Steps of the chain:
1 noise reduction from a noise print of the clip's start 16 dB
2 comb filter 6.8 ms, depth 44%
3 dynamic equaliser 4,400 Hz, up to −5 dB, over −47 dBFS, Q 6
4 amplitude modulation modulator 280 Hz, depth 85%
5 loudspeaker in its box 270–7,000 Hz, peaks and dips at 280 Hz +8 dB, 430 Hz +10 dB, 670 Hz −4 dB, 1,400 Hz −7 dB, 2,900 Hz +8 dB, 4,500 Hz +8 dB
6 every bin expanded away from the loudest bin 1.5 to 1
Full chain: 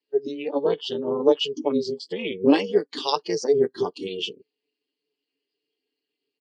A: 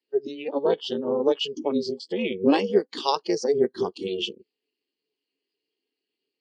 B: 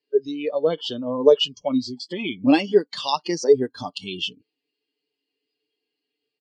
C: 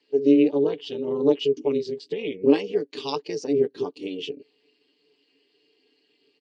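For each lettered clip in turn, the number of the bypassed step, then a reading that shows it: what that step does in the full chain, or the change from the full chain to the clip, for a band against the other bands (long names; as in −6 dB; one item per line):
2, 1 kHz band +2.0 dB
4, change in momentary loudness spread +2 LU
1, 250 Hz band +6.5 dB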